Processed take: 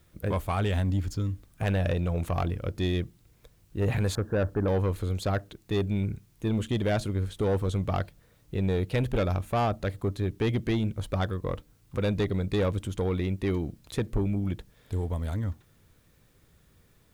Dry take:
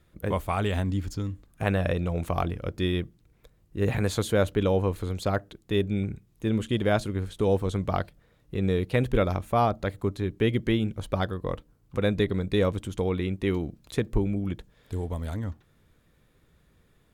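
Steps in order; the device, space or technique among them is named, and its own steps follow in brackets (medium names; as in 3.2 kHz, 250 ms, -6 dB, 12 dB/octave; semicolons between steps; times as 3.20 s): 4.15–4.68 s: Chebyshev low-pass 1.8 kHz, order 10; open-reel tape (saturation -20.5 dBFS, distortion -13 dB; peaking EQ 99 Hz +3.5 dB; white noise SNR 42 dB)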